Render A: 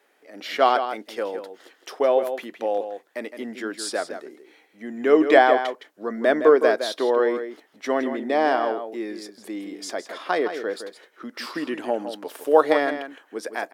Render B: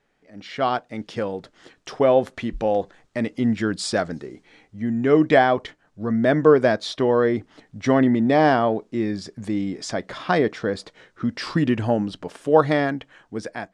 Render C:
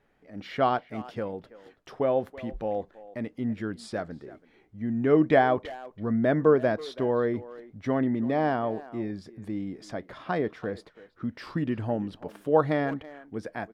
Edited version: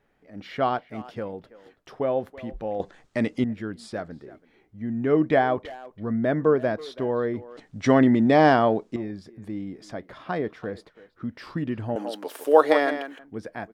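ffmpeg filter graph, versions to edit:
-filter_complex "[1:a]asplit=2[s0][s1];[2:a]asplit=4[s2][s3][s4][s5];[s2]atrim=end=2.802[s6];[s0]atrim=start=2.798:end=3.442[s7];[s3]atrim=start=3.438:end=7.572[s8];[s1]atrim=start=7.568:end=8.962[s9];[s4]atrim=start=8.958:end=11.962[s10];[0:a]atrim=start=11.958:end=13.192[s11];[s5]atrim=start=13.188[s12];[s6][s7]acrossfade=d=0.004:c1=hsin:c2=hsin[s13];[s13][s8]acrossfade=d=0.004:c1=hsin:c2=hsin[s14];[s14][s9]acrossfade=d=0.004:c1=hsin:c2=hsin[s15];[s15][s10]acrossfade=d=0.004:c1=hsin:c2=hsin[s16];[s16][s11]acrossfade=d=0.004:c1=hsin:c2=hsin[s17];[s17][s12]acrossfade=d=0.004:c1=hsin:c2=hsin"

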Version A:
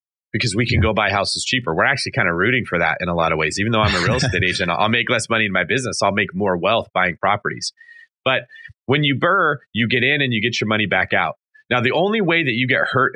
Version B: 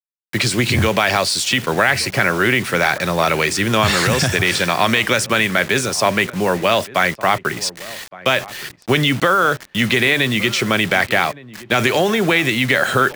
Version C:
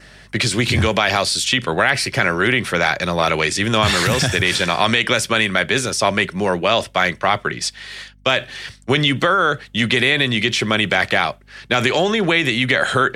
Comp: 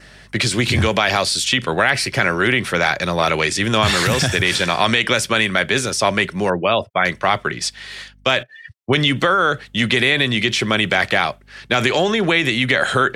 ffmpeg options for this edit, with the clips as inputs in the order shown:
-filter_complex "[0:a]asplit=2[s0][s1];[2:a]asplit=3[s2][s3][s4];[s2]atrim=end=6.502[s5];[s0]atrim=start=6.498:end=7.052[s6];[s3]atrim=start=7.048:end=8.432[s7];[s1]atrim=start=8.428:end=8.932[s8];[s4]atrim=start=8.928[s9];[s5][s6]acrossfade=d=0.004:c1=hsin:c2=hsin[s10];[s10][s7]acrossfade=d=0.004:c1=hsin:c2=hsin[s11];[s11][s8]acrossfade=d=0.004:c1=hsin:c2=hsin[s12];[s12][s9]acrossfade=d=0.004:c1=hsin:c2=hsin"

